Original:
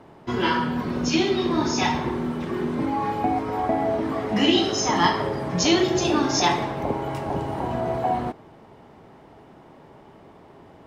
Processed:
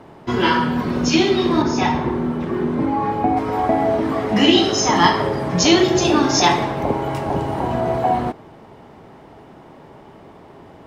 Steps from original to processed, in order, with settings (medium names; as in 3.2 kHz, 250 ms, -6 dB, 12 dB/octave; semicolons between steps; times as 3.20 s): 1.62–3.37 s: treble shelf 2.4 kHz -9.5 dB; trim +5.5 dB